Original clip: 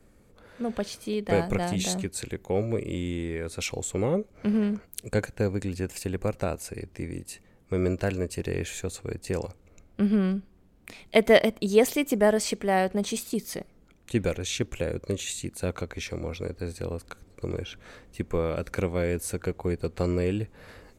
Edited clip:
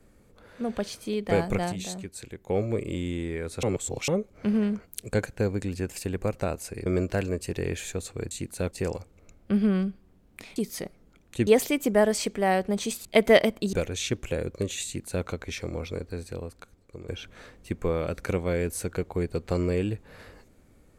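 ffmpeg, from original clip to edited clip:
-filter_complex "[0:a]asplit=13[s0][s1][s2][s3][s4][s5][s6][s7][s8][s9][s10][s11][s12];[s0]atrim=end=1.722[s13];[s1]atrim=start=1.718:end=2.472,asetpts=PTS-STARTPTS,volume=0.447[s14];[s2]atrim=start=2.468:end=3.632[s15];[s3]atrim=start=3.628:end=4.082,asetpts=PTS-STARTPTS,areverse[s16];[s4]atrim=start=4.078:end=6.862[s17];[s5]atrim=start=7.748:end=9.202[s18];[s6]atrim=start=15.338:end=15.742[s19];[s7]atrim=start=9.198:end=11.052[s20];[s8]atrim=start=13.308:end=14.222[s21];[s9]atrim=start=11.728:end=13.312[s22];[s10]atrim=start=11.048:end=11.732[s23];[s11]atrim=start=14.218:end=17.57,asetpts=PTS-STARTPTS,afade=t=out:st=2.172:d=1.18:silence=0.237137[s24];[s12]atrim=start=17.57,asetpts=PTS-STARTPTS,afade=t=in:d=0.004:c=hsin:silence=0.237137[s25];[s13][s14]acrossfade=d=0.004:c1=hsin:c2=hsin[s26];[s26][s15]acrossfade=d=0.004:c1=hsin:c2=hsin[s27];[s27][s16]acrossfade=d=0.004:c1=hsin:c2=hsin[s28];[s28][s17]acrossfade=d=0.004:c1=hsin:c2=hsin[s29];[s29][s18]acrossfade=d=0.004:c1=hsin:c2=hsin[s30];[s30][s19]acrossfade=d=0.004:c1=hsin:c2=hsin[s31];[s31][s20]acrossfade=d=0.004:c1=hsin:c2=hsin[s32];[s32][s21]acrossfade=d=0.004:c1=hsin:c2=hsin[s33];[s33][s22]acrossfade=d=0.004:c1=hsin:c2=hsin[s34];[s34][s23]acrossfade=d=0.004:c1=hsin:c2=hsin[s35];[s24][s25]concat=n=2:v=0:a=1[s36];[s35][s36]acrossfade=d=0.004:c1=hsin:c2=hsin"

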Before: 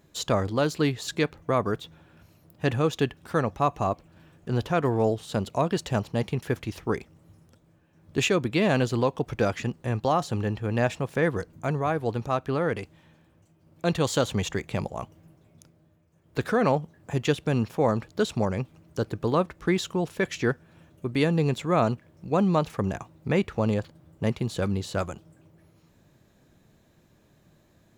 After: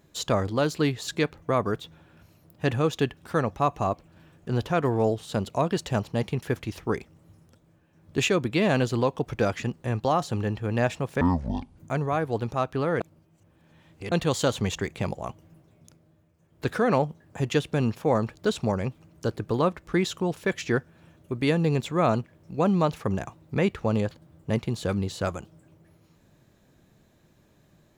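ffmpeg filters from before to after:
-filter_complex "[0:a]asplit=5[s0][s1][s2][s3][s4];[s0]atrim=end=11.214[s5];[s1]atrim=start=11.21:end=11.51,asetpts=PTS-STARTPTS,asetrate=23373,aresample=44100,atrim=end_sample=24962,asetpts=PTS-STARTPTS[s6];[s2]atrim=start=11.506:end=12.742[s7];[s3]atrim=start=12.738:end=13.852,asetpts=PTS-STARTPTS,areverse[s8];[s4]atrim=start=13.848[s9];[s5][s6]acrossfade=d=0.004:c1=hsin:c2=hsin[s10];[s10][s7]acrossfade=d=0.004:c1=hsin:c2=hsin[s11];[s11][s8]acrossfade=d=0.004:c1=hsin:c2=hsin[s12];[s12][s9]acrossfade=d=0.004:c1=hsin:c2=hsin"

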